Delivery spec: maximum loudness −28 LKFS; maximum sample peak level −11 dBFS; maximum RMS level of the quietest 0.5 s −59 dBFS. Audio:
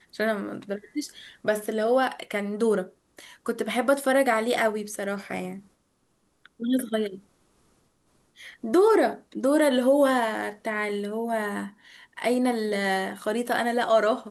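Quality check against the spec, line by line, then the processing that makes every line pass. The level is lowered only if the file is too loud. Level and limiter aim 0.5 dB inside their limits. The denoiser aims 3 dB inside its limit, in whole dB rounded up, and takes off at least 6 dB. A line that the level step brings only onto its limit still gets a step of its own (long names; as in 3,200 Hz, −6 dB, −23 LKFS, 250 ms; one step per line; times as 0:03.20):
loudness −25.5 LKFS: out of spec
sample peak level −10.0 dBFS: out of spec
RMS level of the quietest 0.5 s −69 dBFS: in spec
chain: level −3 dB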